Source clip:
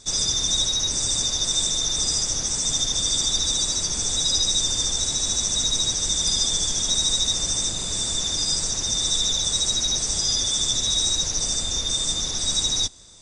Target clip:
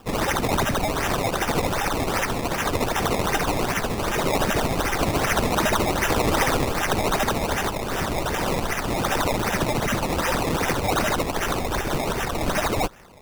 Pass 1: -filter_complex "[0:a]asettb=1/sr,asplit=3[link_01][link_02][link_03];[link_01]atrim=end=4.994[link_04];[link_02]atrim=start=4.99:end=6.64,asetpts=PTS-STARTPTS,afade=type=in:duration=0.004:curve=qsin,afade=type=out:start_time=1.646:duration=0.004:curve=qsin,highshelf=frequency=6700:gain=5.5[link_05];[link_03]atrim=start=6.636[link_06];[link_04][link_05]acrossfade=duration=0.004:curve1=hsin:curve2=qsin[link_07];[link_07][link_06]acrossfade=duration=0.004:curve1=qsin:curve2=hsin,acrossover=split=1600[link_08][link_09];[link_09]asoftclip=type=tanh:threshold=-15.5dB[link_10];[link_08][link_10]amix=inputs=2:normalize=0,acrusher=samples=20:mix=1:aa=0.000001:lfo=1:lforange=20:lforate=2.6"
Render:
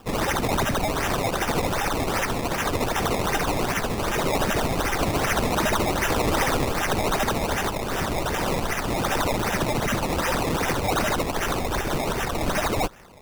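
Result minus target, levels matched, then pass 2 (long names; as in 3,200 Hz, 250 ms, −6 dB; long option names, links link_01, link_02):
soft clipping: distortion +12 dB
-filter_complex "[0:a]asettb=1/sr,asplit=3[link_01][link_02][link_03];[link_01]atrim=end=4.994[link_04];[link_02]atrim=start=4.99:end=6.64,asetpts=PTS-STARTPTS,afade=type=in:duration=0.004:curve=qsin,afade=type=out:start_time=1.646:duration=0.004:curve=qsin,highshelf=frequency=6700:gain=5.5[link_05];[link_03]atrim=start=6.636[link_06];[link_04][link_05]acrossfade=duration=0.004:curve1=hsin:curve2=qsin[link_07];[link_07][link_06]acrossfade=duration=0.004:curve1=qsin:curve2=hsin,acrossover=split=1600[link_08][link_09];[link_09]asoftclip=type=tanh:threshold=-8dB[link_10];[link_08][link_10]amix=inputs=2:normalize=0,acrusher=samples=20:mix=1:aa=0.000001:lfo=1:lforange=20:lforate=2.6"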